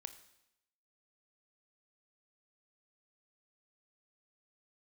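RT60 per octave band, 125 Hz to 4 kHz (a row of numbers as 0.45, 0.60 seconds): 0.80, 0.85, 0.85, 0.85, 0.85, 0.85 seconds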